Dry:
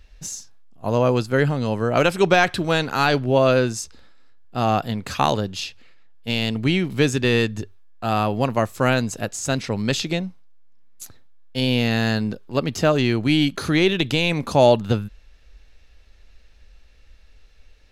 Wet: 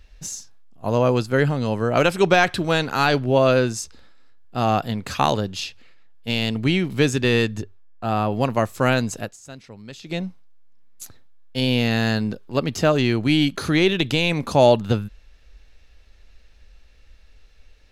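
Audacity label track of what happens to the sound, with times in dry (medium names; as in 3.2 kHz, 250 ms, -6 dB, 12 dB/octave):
7.620000	8.320000	treble shelf 2 kHz -7.5 dB
9.160000	10.230000	dip -17 dB, fades 0.21 s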